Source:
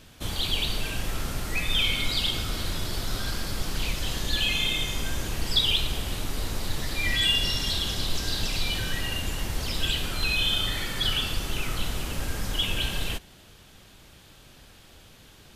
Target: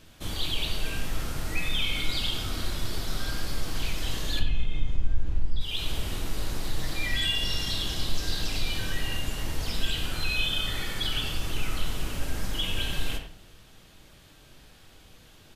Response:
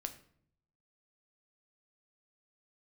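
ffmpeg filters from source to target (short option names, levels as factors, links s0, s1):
-filter_complex "[0:a]asettb=1/sr,asplit=3[s0][s1][s2];[s0]atrim=end=4.394[s3];[s1]atrim=start=4.39:end=5.61,asetpts=PTS-STARTPTS,afade=t=in:d=0.004:c=qsin,afade=t=out:st=1.216:d=0.004:c=qsin,aemphasis=mode=reproduction:type=riaa[s4];[s2]atrim=start=5.606[s5];[s3][s4]acrossfade=d=0.004:c1=hsin:c2=qsin[s6];[s6][s5]acrossfade=d=0.004:c1=qsin:c2=hsin,acompressor=threshold=0.1:ratio=12,asplit=2[s7][s8];[s8]adelay=90,highpass=300,lowpass=3400,asoftclip=type=hard:threshold=0.0891,volume=0.398[s9];[s7][s9]amix=inputs=2:normalize=0[s10];[1:a]atrim=start_sample=2205,asetrate=48510,aresample=44100[s11];[s10][s11]afir=irnorm=-1:irlink=0"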